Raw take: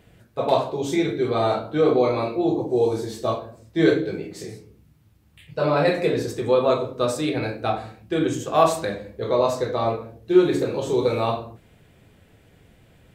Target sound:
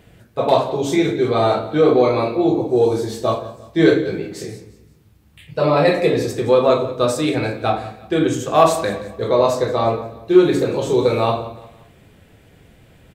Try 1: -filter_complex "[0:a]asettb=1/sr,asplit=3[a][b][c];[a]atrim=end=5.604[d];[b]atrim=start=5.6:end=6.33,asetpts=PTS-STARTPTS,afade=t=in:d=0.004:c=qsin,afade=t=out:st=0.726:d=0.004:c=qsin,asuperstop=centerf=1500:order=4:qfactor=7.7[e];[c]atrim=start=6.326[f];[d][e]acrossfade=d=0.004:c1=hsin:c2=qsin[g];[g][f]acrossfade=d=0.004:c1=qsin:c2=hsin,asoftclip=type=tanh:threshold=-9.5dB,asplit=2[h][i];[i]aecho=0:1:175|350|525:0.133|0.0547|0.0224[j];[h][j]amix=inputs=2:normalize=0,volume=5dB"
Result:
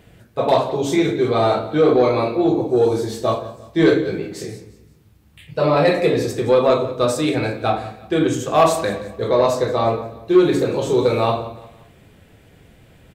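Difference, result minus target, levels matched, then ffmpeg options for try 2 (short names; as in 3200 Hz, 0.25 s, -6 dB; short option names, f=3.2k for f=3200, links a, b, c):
soft clip: distortion +10 dB
-filter_complex "[0:a]asettb=1/sr,asplit=3[a][b][c];[a]atrim=end=5.604[d];[b]atrim=start=5.6:end=6.33,asetpts=PTS-STARTPTS,afade=t=in:d=0.004:c=qsin,afade=t=out:st=0.726:d=0.004:c=qsin,asuperstop=centerf=1500:order=4:qfactor=7.7[e];[c]atrim=start=6.326[f];[d][e]acrossfade=d=0.004:c1=hsin:c2=qsin[g];[g][f]acrossfade=d=0.004:c1=qsin:c2=hsin,asoftclip=type=tanh:threshold=-3dB,asplit=2[h][i];[i]aecho=0:1:175|350|525:0.133|0.0547|0.0224[j];[h][j]amix=inputs=2:normalize=0,volume=5dB"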